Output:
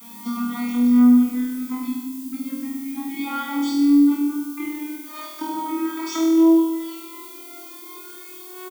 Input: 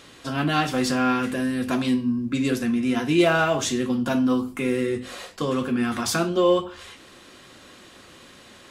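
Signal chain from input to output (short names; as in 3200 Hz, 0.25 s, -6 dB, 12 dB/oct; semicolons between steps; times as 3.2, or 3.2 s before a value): vocoder on a gliding note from A#3, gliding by +8 st; comb 0.9 ms, depth 99%; compressor 5:1, threshold -34 dBFS, peak gain reduction 18.5 dB; added noise violet -54 dBFS; flutter echo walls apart 4.2 m, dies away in 1.1 s; gain +7 dB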